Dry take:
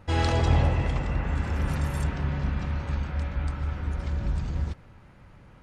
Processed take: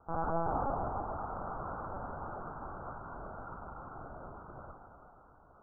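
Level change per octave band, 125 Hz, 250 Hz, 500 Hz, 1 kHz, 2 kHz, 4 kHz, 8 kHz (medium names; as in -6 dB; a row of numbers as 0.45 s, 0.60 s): -20.5 dB, -12.0 dB, -5.0 dB, -1.5 dB, -14.0 dB, under -40 dB, under -35 dB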